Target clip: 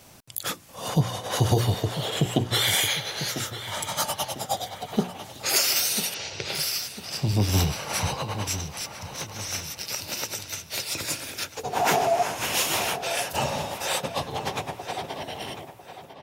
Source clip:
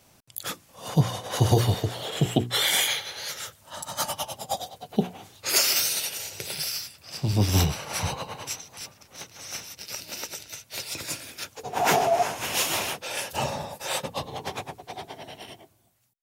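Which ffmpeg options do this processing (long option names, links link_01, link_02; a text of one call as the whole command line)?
ffmpeg -i in.wav -filter_complex "[0:a]asettb=1/sr,asplit=3[link_01][link_02][link_03];[link_01]atrim=end=6.144[link_04];[link_02]atrim=start=6.14:end=6.55,asetpts=PTS-STARTPTS,afade=type=in:duration=0.004:curve=qsin,afade=type=out:start_time=0.406:duration=0.004:curve=qsin,lowpass=frequency=5300:width=0.5412,lowpass=frequency=5300:width=1.3066[link_05];[link_03]atrim=start=6.546[link_06];[link_04][link_05]acrossfade=duration=0.004:curve1=hsin:curve2=qsin[link_07];[link_07][link_06]acrossfade=duration=0.004:curve1=qsin:curve2=hsin,acompressor=threshold=-41dB:ratio=1.5,asplit=2[link_08][link_09];[link_09]adelay=998,lowpass=frequency=3700:poles=1,volume=-11dB,asplit=2[link_10][link_11];[link_11]adelay=998,lowpass=frequency=3700:poles=1,volume=0.39,asplit=2[link_12][link_13];[link_13]adelay=998,lowpass=frequency=3700:poles=1,volume=0.39,asplit=2[link_14][link_15];[link_15]adelay=998,lowpass=frequency=3700:poles=1,volume=0.39[link_16];[link_10][link_12][link_14][link_16]amix=inputs=4:normalize=0[link_17];[link_08][link_17]amix=inputs=2:normalize=0,volume=7.5dB" out.wav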